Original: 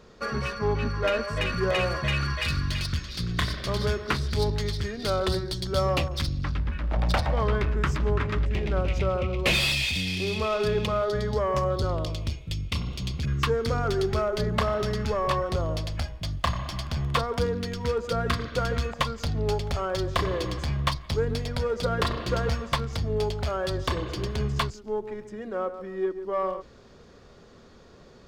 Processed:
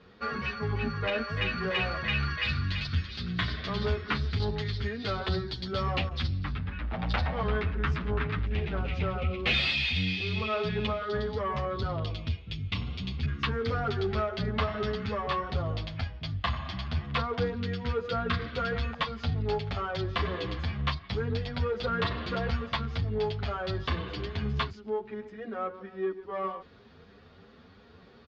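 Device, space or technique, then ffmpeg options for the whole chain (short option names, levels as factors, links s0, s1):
barber-pole flanger into a guitar amplifier: -filter_complex "[0:a]asettb=1/sr,asplit=3[s0][s1][s2];[s0]atrim=end=9.154[s3];[s1]atrim=start=9.15:end=9.62,asetpts=PTS-STARTPTS,afade=t=in:d=0.004:c=qsin,afade=t=out:st=0.466:d=0.004:c=qsin,bandreject=f=950:w=6.1[s4];[s2]atrim=start=9.616[s5];[s3][s4]acrossfade=d=0.004:c1=hsin:c2=qsin[s6];[s6][s5]acrossfade=d=0.004:c1=qsin:c2=hsin,asplit=2[s7][s8];[s8]adelay=8.7,afreqshift=3[s9];[s7][s9]amix=inputs=2:normalize=1,asoftclip=type=tanh:threshold=0.106,highpass=77,equalizer=f=86:t=q:w=4:g=5,equalizer=f=130:t=q:w=4:g=-7,equalizer=f=340:t=q:w=4:g=-7,equalizer=f=570:t=q:w=4:g=-8,equalizer=f=1000:t=q:w=4:g=-4,lowpass=f=4100:w=0.5412,lowpass=f=4100:w=1.3066,volume=1.41"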